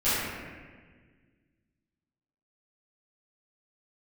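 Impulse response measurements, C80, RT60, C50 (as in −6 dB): −1.0 dB, 1.6 s, −3.5 dB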